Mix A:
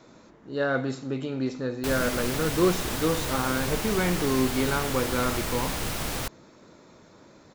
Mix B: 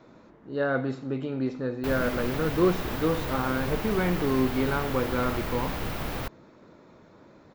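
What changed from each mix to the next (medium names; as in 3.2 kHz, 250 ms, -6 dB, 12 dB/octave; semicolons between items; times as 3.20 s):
master: add peaking EQ 8.1 kHz -14.5 dB 1.8 oct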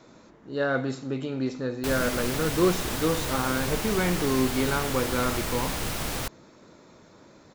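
master: add peaking EQ 8.1 kHz +14.5 dB 1.8 oct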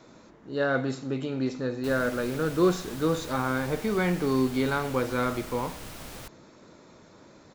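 background -11.5 dB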